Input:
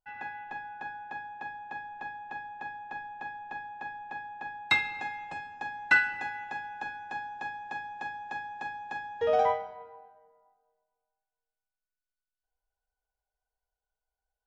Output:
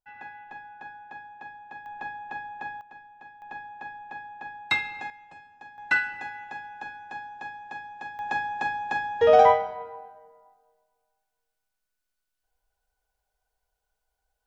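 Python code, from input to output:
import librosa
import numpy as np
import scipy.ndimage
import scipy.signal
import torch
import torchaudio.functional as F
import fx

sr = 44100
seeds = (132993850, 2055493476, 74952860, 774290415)

y = fx.gain(x, sr, db=fx.steps((0.0, -3.0), (1.86, 3.5), (2.81, -8.5), (3.42, 0.0), (5.1, -9.5), (5.78, -1.0), (8.19, 9.0)))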